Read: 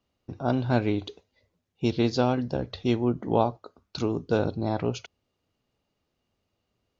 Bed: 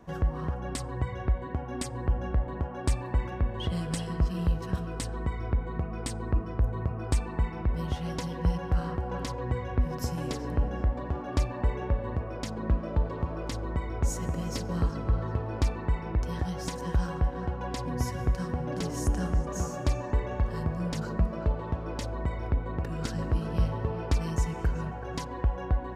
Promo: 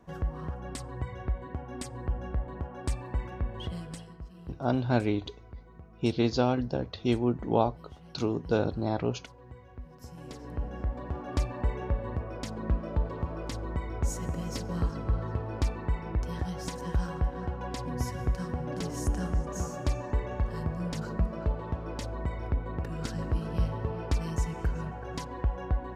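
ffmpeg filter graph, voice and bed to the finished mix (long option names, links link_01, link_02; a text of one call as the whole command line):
ffmpeg -i stem1.wav -i stem2.wav -filter_complex "[0:a]adelay=4200,volume=-2dB[link_01];[1:a]volume=11.5dB,afade=type=out:start_time=3.6:duration=0.58:silence=0.211349,afade=type=in:start_time=9.95:duration=1.39:silence=0.158489[link_02];[link_01][link_02]amix=inputs=2:normalize=0" out.wav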